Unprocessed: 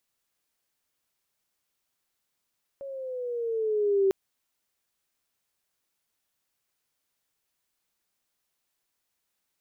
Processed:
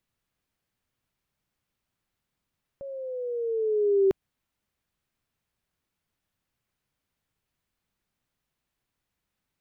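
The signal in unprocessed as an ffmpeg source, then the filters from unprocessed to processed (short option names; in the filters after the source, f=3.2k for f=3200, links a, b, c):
-f lavfi -i "aevalsrc='pow(10,(-18.5+17*(t/1.3-1))/20)*sin(2*PI*557*1.3/(-6.5*log(2)/12)*(exp(-6.5*log(2)/12*t/1.3)-1))':d=1.3:s=44100"
-af "bass=f=250:g=12,treble=f=4k:g=-8"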